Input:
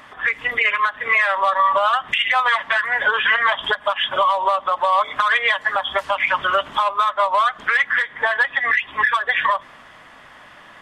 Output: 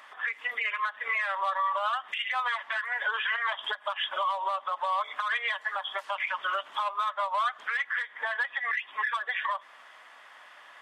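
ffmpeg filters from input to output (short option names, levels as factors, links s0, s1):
-af "highpass=650,alimiter=limit=0.2:level=0:latency=1:release=330,volume=0.473"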